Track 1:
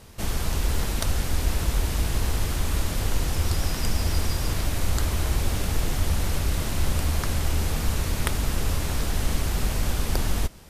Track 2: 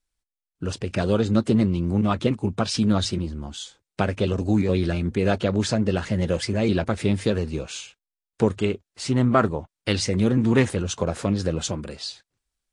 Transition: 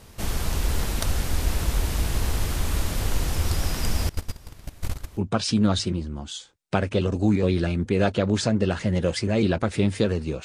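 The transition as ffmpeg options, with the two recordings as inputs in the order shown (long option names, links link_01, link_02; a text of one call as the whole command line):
ffmpeg -i cue0.wav -i cue1.wav -filter_complex "[0:a]asettb=1/sr,asplit=3[link_01][link_02][link_03];[link_01]atrim=end=4.094[link_04];[link_02]atrim=start=4.09:end=5.21,asetpts=PTS-STARTPTS,afade=type=in:duration=0.004:curve=qsin,afade=type=out:start_time=1.116:duration=0.004:curve=qsin,agate=range=-22dB:threshold=-20dB:ratio=16:release=100:detection=peak[link_05];[link_03]atrim=start=5.206[link_06];[link_04][link_05]acrossfade=duration=0.004:curve1=hsin:curve2=qsin[link_07];[link_07][link_06]acrossfade=duration=0.004:curve1=qsin:curve2=hsin,apad=whole_dur=10.44,atrim=end=10.44,atrim=end=5.21,asetpts=PTS-STARTPTS[link_08];[1:a]atrim=start=2.41:end=7.7,asetpts=PTS-STARTPTS[link_09];[link_08][link_09]acrossfade=duration=0.06:curve1=tri:curve2=tri" out.wav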